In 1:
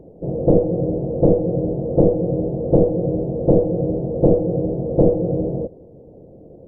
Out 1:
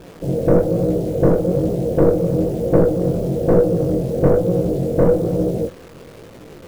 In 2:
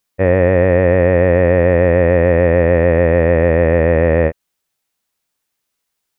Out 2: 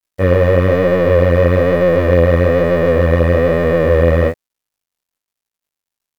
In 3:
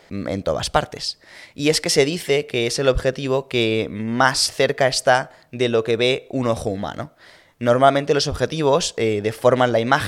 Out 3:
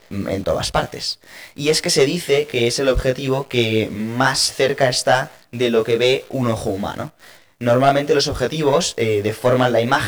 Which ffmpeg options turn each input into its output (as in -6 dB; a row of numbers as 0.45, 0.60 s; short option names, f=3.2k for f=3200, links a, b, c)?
-af "acrusher=bits=8:dc=4:mix=0:aa=0.000001,acontrast=72,flanger=delay=16.5:depth=7.4:speed=1.1,volume=-1dB"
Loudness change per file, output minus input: +1.5, 0.0, +1.5 LU